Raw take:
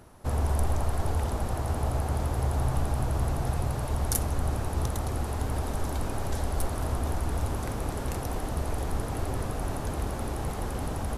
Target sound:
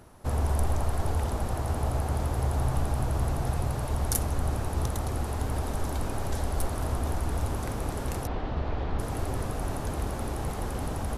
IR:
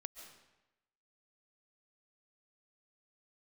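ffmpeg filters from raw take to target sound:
-filter_complex "[0:a]asettb=1/sr,asplit=3[s0][s1][s2];[s0]atrim=end=8.274[s3];[s1]atrim=start=8.27:end=8.99,asetpts=PTS-STARTPTS,afade=t=in:d=0.004:c=qsin,afade=t=out:st=0.716:d=0.004:c=qsin,lowpass=f=4000:w=0.5412,lowpass=f=4000:w=1.3066[s4];[s2]atrim=start=8.986[s5];[s3][s4]acrossfade=d=0.004:c1=hsin:c2=qsin[s6];[s6][s5]acrossfade=d=0.004:c1=qsin:c2=hsin"

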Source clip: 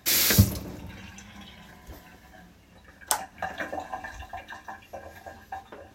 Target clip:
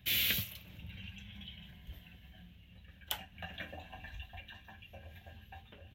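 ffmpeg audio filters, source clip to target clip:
-filter_complex "[0:a]firequalizer=gain_entry='entry(140,0);entry(310,-16);entry(540,-14);entry(1000,-20);entry(3000,3);entry(4800,-19);entry(8800,-21);entry(13000,-8)':delay=0.05:min_phase=1,acrossover=split=760[s0][s1];[s0]acompressor=threshold=0.00708:ratio=6[s2];[s2][s1]amix=inputs=2:normalize=0"

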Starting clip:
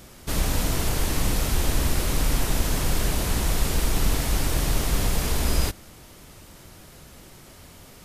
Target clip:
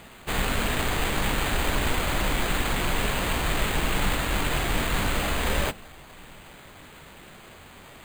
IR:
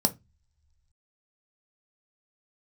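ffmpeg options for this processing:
-filter_complex "[0:a]bass=f=250:g=-2,treble=f=4000:g=8,acrusher=samples=8:mix=1:aa=0.000001,asplit=2[s0][s1];[1:a]atrim=start_sample=2205,adelay=17[s2];[s1][s2]afir=irnorm=-1:irlink=0,volume=0.0708[s3];[s0][s3]amix=inputs=2:normalize=0,volume=0.708"

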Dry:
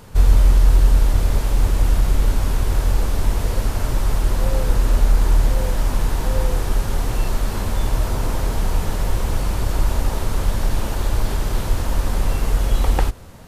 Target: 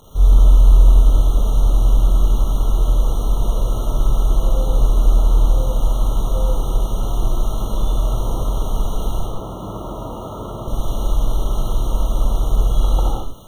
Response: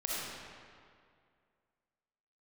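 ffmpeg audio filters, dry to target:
-filter_complex "[0:a]asettb=1/sr,asplit=3[s0][s1][s2];[s0]atrim=end=9.194[s3];[s1]atrim=start=9.19:end=10.68,asetpts=PTS-STARTPTS,afade=t=in:d=0.004:c=qsin,afade=t=out:st=1.486:d=0.004:c=qsin,highpass=110,lowpass=2100[s4];[s2]atrim=start=10.676[s5];[s3][s4]acrossfade=d=0.004:c1=hsin:c2=qsin[s6];[s6][s5]acrossfade=d=0.004:c1=qsin:c2=hsin,acrusher=bits=6:mix=0:aa=0.000001[s7];[1:a]atrim=start_sample=2205,afade=t=out:st=0.28:d=0.01,atrim=end_sample=12789[s8];[s7][s8]afir=irnorm=-1:irlink=0,afftfilt=real='re*eq(mod(floor(b*sr/1024/1400),2),0)':imag='im*eq(mod(floor(b*sr/1024/1400),2),0)':win_size=1024:overlap=0.75,volume=0.631"

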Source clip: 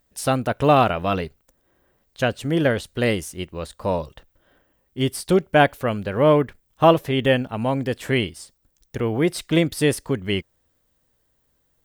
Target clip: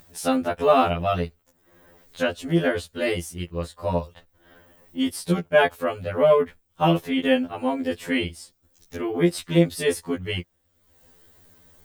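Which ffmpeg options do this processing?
-af "acompressor=mode=upward:threshold=0.0141:ratio=2.5,afftfilt=real='re*2*eq(mod(b,4),0)':imag='im*2*eq(mod(b,4),0)':win_size=2048:overlap=0.75"

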